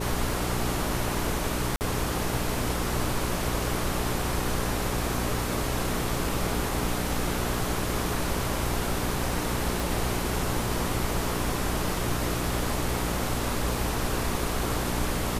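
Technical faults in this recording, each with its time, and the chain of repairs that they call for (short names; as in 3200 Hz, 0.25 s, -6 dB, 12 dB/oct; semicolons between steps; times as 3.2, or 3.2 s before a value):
hum 60 Hz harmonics 7 -32 dBFS
1.76–1.81 gap 49 ms
9.8 pop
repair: de-click; de-hum 60 Hz, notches 7; interpolate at 1.76, 49 ms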